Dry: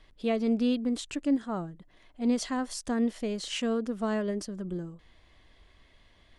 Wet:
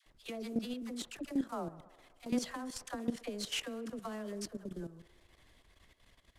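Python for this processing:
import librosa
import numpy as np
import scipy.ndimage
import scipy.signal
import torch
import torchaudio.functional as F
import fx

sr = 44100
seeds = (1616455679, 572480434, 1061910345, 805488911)

p1 = fx.cvsd(x, sr, bps=64000)
p2 = fx.dispersion(p1, sr, late='lows', ms=65.0, hz=700.0)
p3 = fx.level_steps(p2, sr, step_db=12)
p4 = fx.hpss(p3, sr, part='harmonic', gain_db=-7)
p5 = p4 + fx.echo_wet_bandpass(p4, sr, ms=65, feedback_pct=75, hz=860.0, wet_db=-16.5, dry=0)
y = p5 * librosa.db_to_amplitude(1.5)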